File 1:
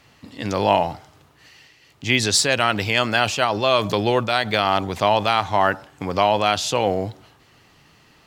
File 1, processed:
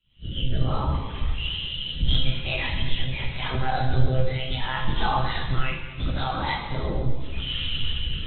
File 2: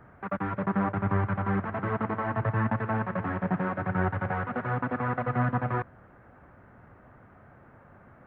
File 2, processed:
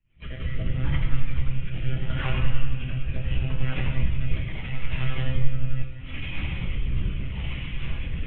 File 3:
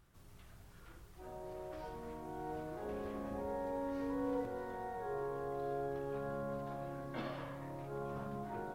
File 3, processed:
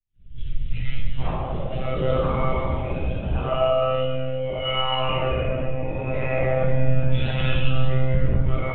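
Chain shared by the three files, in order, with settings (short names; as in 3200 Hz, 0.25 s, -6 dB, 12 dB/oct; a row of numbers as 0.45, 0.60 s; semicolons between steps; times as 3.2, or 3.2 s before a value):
inharmonic rescaling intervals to 122%; recorder AGC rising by 76 dB/s; EQ curve 140 Hz 0 dB, 260 Hz -15 dB, 1800 Hz -7 dB, 3000 Hz +5 dB; soft clip -21.5 dBFS; monotone LPC vocoder at 8 kHz 130 Hz; rotary speaker horn 0.75 Hz; plate-style reverb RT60 2.1 s, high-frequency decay 0.95×, DRR -1 dB; spectral expander 1.5:1; normalise peaks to -6 dBFS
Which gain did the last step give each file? +7.5, +7.5, +9.0 dB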